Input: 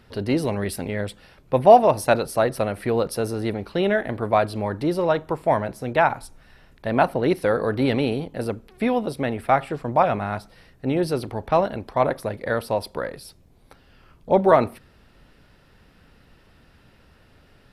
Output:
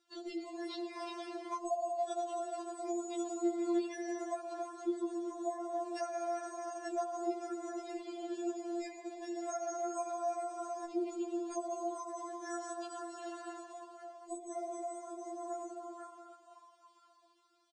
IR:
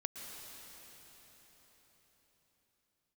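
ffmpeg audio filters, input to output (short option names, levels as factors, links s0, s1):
-filter_complex "[1:a]atrim=start_sample=2205,asetrate=79380,aresample=44100[s0];[0:a][s0]afir=irnorm=-1:irlink=0,asettb=1/sr,asplit=3[s1][s2][s3];[s1]atrim=end=0.944[s4];[s2]atrim=start=0.94:end=1.58,asetpts=PTS-STARTPTS,afade=t=in:d=0.004:c=qsin,afade=t=out:st=0.636:d=0.004:c=qsin,aeval=exprs='abs(val(0))':c=same[s5];[s3]atrim=start=1.576[s6];[s4][s5]acrossfade=d=0.004:c1=hsin:c2=qsin[s7];[s7][s6]acrossfade=d=0.004:c1=qsin:c2=hsin,asettb=1/sr,asplit=3[s8][s9][s10];[s8]atrim=end=2.924[s11];[s9]atrim=start=2.92:end=3.59,asetpts=PTS-STARTPTS,afade=t=in:d=0.004:c=qsin,afade=t=out:st=0.666:d=0.004:c=qsin,equalizer=f=3100:w=1.6:g=-8.5[s12];[s10]atrim=start=3.586[s13];[s11][s12]acrossfade=d=0.004:c1=hsin:c2=qsin[s14];[s14][s13]acrossfade=d=0.004:c1=qsin:c2=hsin,acrusher=samples=6:mix=1:aa=0.000001,asplit=6[s15][s16][s17][s18][s19][s20];[s16]adelay=499,afreqshift=89,volume=0.15[s21];[s17]adelay=998,afreqshift=178,volume=0.0804[s22];[s18]adelay=1497,afreqshift=267,volume=0.0437[s23];[s19]adelay=1996,afreqshift=356,volume=0.0234[s24];[s20]adelay=2495,afreqshift=445,volume=0.0127[s25];[s15][s21][s22][s23][s24][s25]amix=inputs=6:normalize=0,afftfilt=real='re*between(b*sr/4096,120,9400)':imag='im*between(b*sr/4096,120,9400)':win_size=4096:overlap=0.75,bandreject=f=420:w=12,acompressor=threshold=0.0158:ratio=12,afftdn=nr=13:nf=-50,equalizer=f=250:t=o:w=1:g=-4,equalizer=f=1000:t=o:w=1:g=-4,equalizer=f=2000:t=o:w=1:g=-8,equalizer=f=4000:t=o:w=1:g=5,afftfilt=real='re*4*eq(mod(b,16),0)':imag='im*4*eq(mod(b,16),0)':win_size=2048:overlap=0.75,volume=2"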